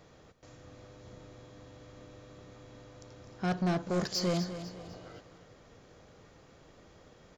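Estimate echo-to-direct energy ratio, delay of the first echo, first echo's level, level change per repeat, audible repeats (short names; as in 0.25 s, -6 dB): -11.0 dB, 0.25 s, -11.5 dB, -8.0 dB, 3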